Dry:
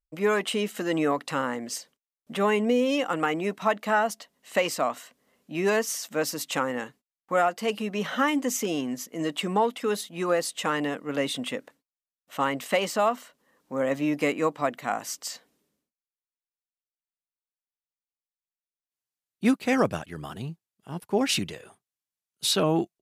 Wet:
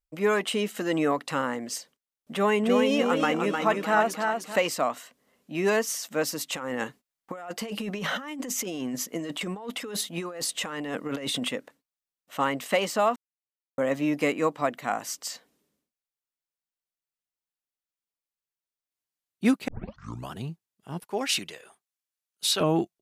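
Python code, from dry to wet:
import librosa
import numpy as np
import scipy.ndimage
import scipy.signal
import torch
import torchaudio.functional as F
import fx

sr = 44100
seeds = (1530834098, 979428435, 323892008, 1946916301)

y = fx.echo_warbled(x, sr, ms=305, feedback_pct=39, rate_hz=2.8, cents=53, wet_db=-4.5, at=(2.32, 4.56))
y = fx.over_compress(y, sr, threshold_db=-33.0, ratio=-1.0, at=(6.52, 11.49))
y = fx.highpass(y, sr, hz=680.0, slope=6, at=(21.04, 22.61))
y = fx.edit(y, sr, fx.silence(start_s=13.16, length_s=0.62),
    fx.tape_start(start_s=19.68, length_s=0.63), tone=tone)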